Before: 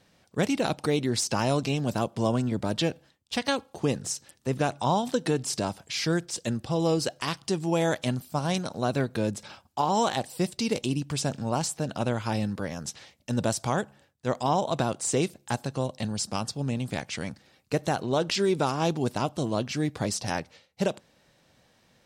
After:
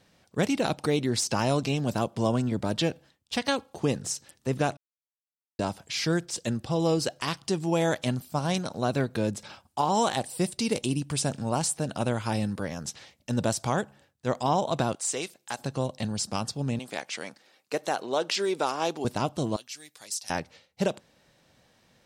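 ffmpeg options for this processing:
ffmpeg -i in.wav -filter_complex "[0:a]asettb=1/sr,asplit=3[link_01][link_02][link_03];[link_01]atrim=end=9.644[link_04];[link_02]atrim=start=9.64:end=12.63,asetpts=PTS-STARTPTS,afade=type=in:duration=0.004:curve=qsin,afade=type=out:start_time=2.986:duration=0.004:curve=qsin,equalizer=frequency=9200:width_type=o:width=0.3:gain=8.5[link_05];[link_03]atrim=start=12.626[link_06];[link_04][link_05]acrossfade=duration=0.004:curve1=hsin:curve2=qsin[link_07];[link_07][link_06]acrossfade=duration=0.004:curve1=qsin:curve2=hsin,asettb=1/sr,asplit=3[link_08][link_09][link_10];[link_08]atrim=end=14.954[link_11];[link_09]atrim=start=14.95:end=15.59,asetpts=PTS-STARTPTS,afade=type=in:duration=0.004:curve=qsin,afade=type=out:start_time=0.636:duration=0.004:curve=qsin,highpass=frequency=1000:poles=1[link_12];[link_10]atrim=start=15.586[link_13];[link_11][link_12]acrossfade=duration=0.004:curve1=hsin:curve2=qsin[link_14];[link_14][link_13]acrossfade=duration=0.004:curve1=qsin:curve2=hsin,asettb=1/sr,asplit=3[link_15][link_16][link_17];[link_15]atrim=end=16.794[link_18];[link_16]atrim=start=16.79:end=19.05,asetpts=PTS-STARTPTS,afade=type=in:duration=0.004:curve=qsin,afade=type=out:start_time=2.256:duration=0.004:curve=qsin,highpass=380[link_19];[link_17]atrim=start=19.046[link_20];[link_18][link_19]acrossfade=duration=0.004:curve1=hsin:curve2=qsin[link_21];[link_21][link_20]acrossfade=duration=0.004:curve1=qsin:curve2=hsin,asettb=1/sr,asplit=3[link_22][link_23][link_24];[link_22]atrim=end=19.564[link_25];[link_23]atrim=start=19.56:end=20.3,asetpts=PTS-STARTPTS,afade=type=in:duration=0.004:curve=qsin,afade=type=out:start_time=0.736:duration=0.004:curve=qsin,aderivative[link_26];[link_24]atrim=start=20.296[link_27];[link_25][link_26]acrossfade=duration=0.004:curve1=hsin:curve2=qsin[link_28];[link_28][link_27]acrossfade=duration=0.004:curve1=qsin:curve2=hsin,asplit=3[link_29][link_30][link_31];[link_29]atrim=end=4.77,asetpts=PTS-STARTPTS,afade=type=out:start_time=4.766:duration=0.004:curve=hsin[link_32];[link_30]atrim=start=4.77:end=5.59,asetpts=PTS-STARTPTS,volume=0[link_33];[link_31]atrim=start=5.59,asetpts=PTS-STARTPTS,afade=type=in:duration=0.004:curve=hsin[link_34];[link_32][link_33][link_34]concat=n=3:v=0:a=1" out.wav

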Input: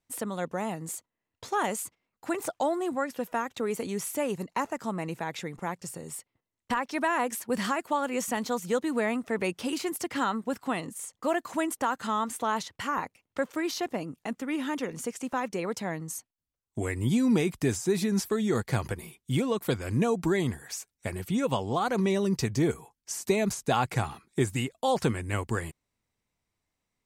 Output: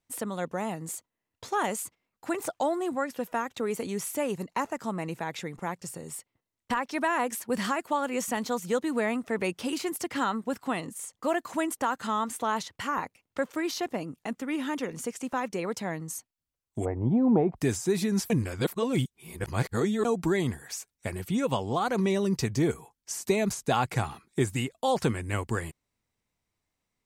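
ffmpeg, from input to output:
ffmpeg -i in.wav -filter_complex "[0:a]asplit=3[link_01][link_02][link_03];[link_01]afade=type=out:start_time=16.84:duration=0.02[link_04];[link_02]lowpass=frequency=750:width_type=q:width=4.3,afade=type=in:start_time=16.84:duration=0.02,afade=type=out:start_time=17.56:duration=0.02[link_05];[link_03]afade=type=in:start_time=17.56:duration=0.02[link_06];[link_04][link_05][link_06]amix=inputs=3:normalize=0,asplit=3[link_07][link_08][link_09];[link_07]atrim=end=18.302[link_10];[link_08]atrim=start=18.298:end=20.052,asetpts=PTS-STARTPTS,areverse[link_11];[link_09]atrim=start=20.048[link_12];[link_10][link_11]acrossfade=duration=0.004:curve1=hsin:curve2=hsin[link_13];[link_13][link_12]acrossfade=duration=0.004:curve1=hsin:curve2=hsin" out.wav

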